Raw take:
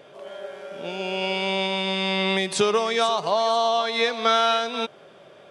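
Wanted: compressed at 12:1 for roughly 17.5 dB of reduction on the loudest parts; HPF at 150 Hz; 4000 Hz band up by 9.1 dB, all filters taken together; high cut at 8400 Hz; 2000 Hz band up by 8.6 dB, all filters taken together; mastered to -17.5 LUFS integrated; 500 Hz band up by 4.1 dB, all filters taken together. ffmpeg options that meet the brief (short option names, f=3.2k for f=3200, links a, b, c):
-af "highpass=150,lowpass=8.4k,equalizer=f=500:t=o:g=5,equalizer=f=2k:t=o:g=7.5,equalizer=f=4k:t=o:g=8.5,acompressor=threshold=-28dB:ratio=12,volume=13.5dB"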